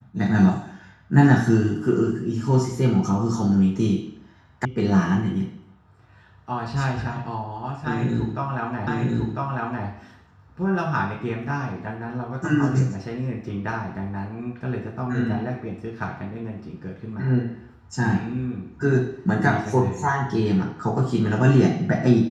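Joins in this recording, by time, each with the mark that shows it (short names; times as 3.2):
4.65 sound cut off
8.87 repeat of the last 1 s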